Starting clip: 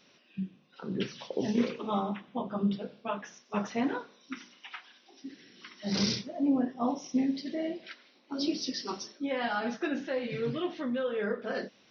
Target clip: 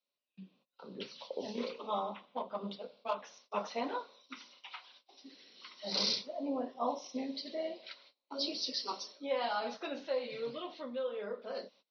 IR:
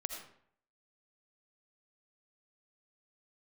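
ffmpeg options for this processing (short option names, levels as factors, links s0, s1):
-filter_complex "[0:a]acrossover=split=370[s0][s1];[s1]dynaudnorm=f=280:g=13:m=1.78[s2];[s0][s2]amix=inputs=2:normalize=0,asettb=1/sr,asplit=3[s3][s4][s5];[s3]atrim=end=2.254[s6];[s4]atrim=start=2.25:end=3.15,asetpts=PTS-STARTPTS,afade=t=in:d=0.004:c=qsin,afade=t=out:st=0.896:d=0.004:c=qsin,aeval=exprs='0.168*(cos(1*acos(clip(val(0)/0.168,-1,1)))-cos(1*PI/2))+0.00335*(cos(5*acos(clip(val(0)/0.168,-1,1)))-cos(5*PI/2))+0.00944*(cos(7*acos(clip(val(0)/0.168,-1,1)))-cos(7*PI/2))':c=same[s7];[s5]atrim=start=3.146[s8];[s6][s7]acrossfade=d=0.004:c1=hsin:c2=qsin[s9];[s9][s8]acrossfade=d=0.004:c1=qsin:c2=hsin,agate=range=0.0631:threshold=0.002:ratio=16:detection=peak,highpass=290,equalizer=f=340:t=q:w=4:g=-6,equalizer=f=560:t=q:w=4:g=6,equalizer=f=1000:t=q:w=4:g=5,equalizer=f=1700:t=q:w=4:g=-10,equalizer=f=4200:t=q:w=4:g=9,lowpass=f=5800:w=0.5412,lowpass=f=5800:w=1.3066,volume=0.398"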